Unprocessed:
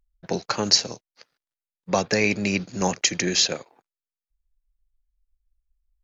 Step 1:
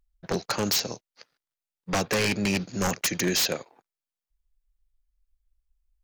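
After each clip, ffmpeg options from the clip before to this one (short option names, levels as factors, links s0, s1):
-af "aeval=exprs='0.126*(abs(mod(val(0)/0.126+3,4)-2)-1)':c=same"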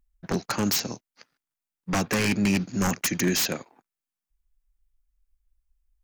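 -af "equalizer=f=250:t=o:w=1:g=5,equalizer=f=500:t=o:w=1:g=-6,equalizer=f=4000:t=o:w=1:g=-5,volume=1.19"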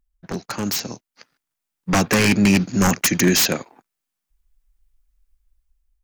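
-af "dynaudnorm=f=460:g=5:m=2.99,volume=0.841"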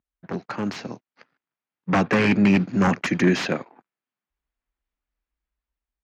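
-af "highpass=120,lowpass=2400,volume=0.891"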